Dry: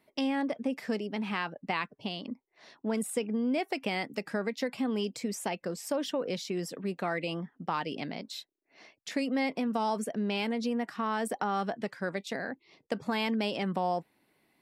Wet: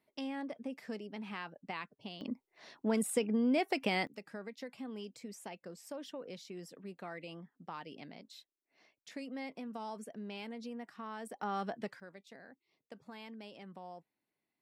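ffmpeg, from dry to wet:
-af "asetnsamples=n=441:p=0,asendcmd='2.21 volume volume -0.5dB;4.07 volume volume -13dB;11.43 volume volume -6dB;12 volume volume -19dB',volume=0.316"

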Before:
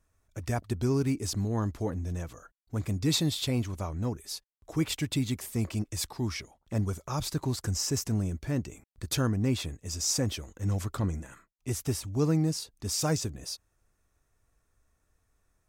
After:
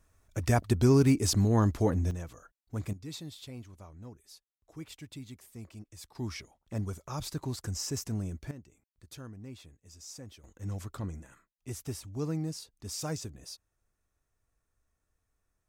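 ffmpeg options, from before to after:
-af "asetnsamples=n=441:p=0,asendcmd='2.11 volume volume -3.5dB;2.93 volume volume -15.5dB;6.15 volume volume -5dB;8.51 volume volume -18dB;10.44 volume volume -7.5dB',volume=1.78"

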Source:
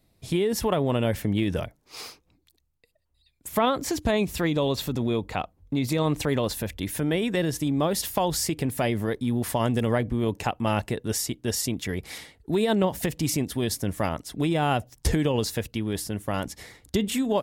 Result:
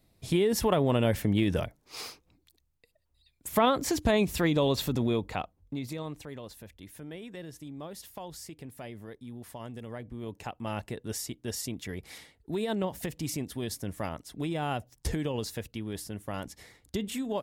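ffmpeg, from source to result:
-af "volume=2.66,afade=t=out:st=4.97:d=0.85:silence=0.334965,afade=t=out:st=5.82:d=0.41:silence=0.446684,afade=t=in:st=9.89:d=1.18:silence=0.334965"

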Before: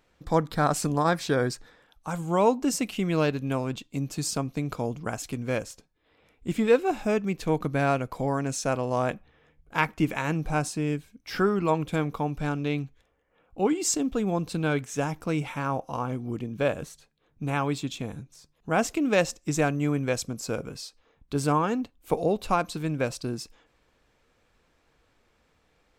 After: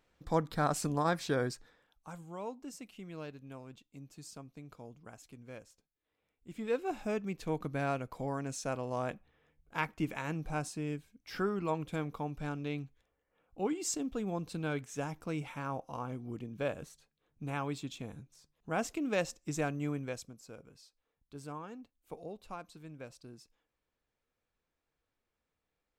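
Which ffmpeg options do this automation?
-af "volume=1.5,afade=t=out:st=1.36:d=0.98:silence=0.223872,afade=t=in:st=6.48:d=0.44:silence=0.298538,afade=t=out:st=19.89:d=0.49:silence=0.298538"

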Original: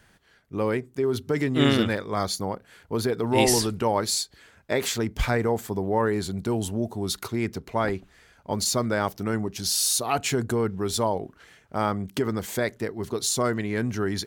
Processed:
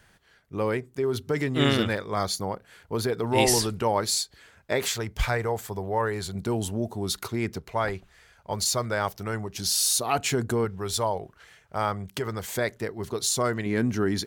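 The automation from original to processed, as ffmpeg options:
-af "asetnsamples=n=441:p=0,asendcmd='4.88 equalizer g -12.5;6.35 equalizer g -2.5;7.6 equalizer g -11;9.55 equalizer g -1.5;10.65 equalizer g -11.5;12.56 equalizer g -4.5;13.66 equalizer g 3.5',equalizer=f=260:t=o:w=1:g=-4"

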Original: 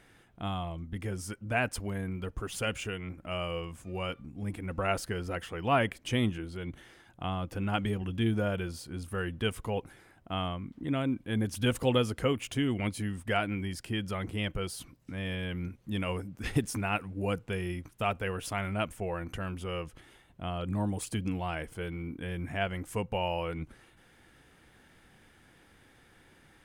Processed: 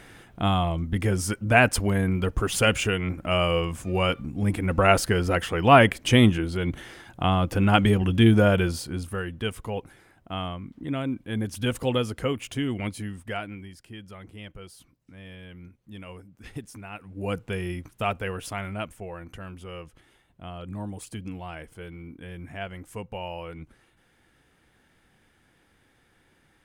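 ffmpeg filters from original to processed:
-af "volume=15.8,afade=t=out:st=8.65:d=0.59:silence=0.316228,afade=t=out:st=12.84:d=0.9:silence=0.298538,afade=t=in:st=16.97:d=0.41:silence=0.237137,afade=t=out:st=18.09:d=1:silence=0.446684"

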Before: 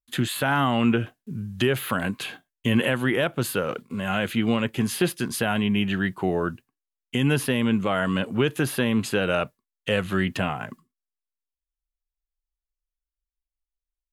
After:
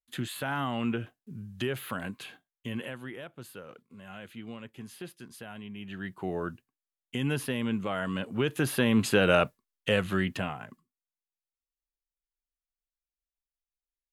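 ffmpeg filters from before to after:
-af "volume=3.76,afade=t=out:st=1.96:d=1.24:silence=0.316228,afade=t=in:st=5.78:d=0.61:silence=0.266073,afade=t=in:st=8.29:d=1.04:silence=0.334965,afade=t=out:st=9.33:d=1.33:silence=0.251189"

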